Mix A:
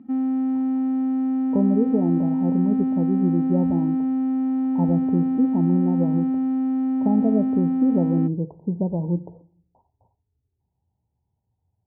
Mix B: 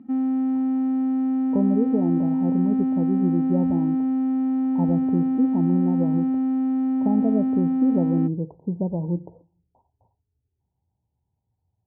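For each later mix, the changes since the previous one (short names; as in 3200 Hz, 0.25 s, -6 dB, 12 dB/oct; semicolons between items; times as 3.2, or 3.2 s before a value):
speech: send -8.0 dB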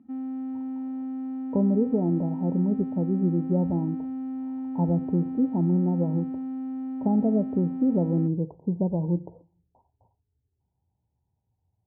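background -10.0 dB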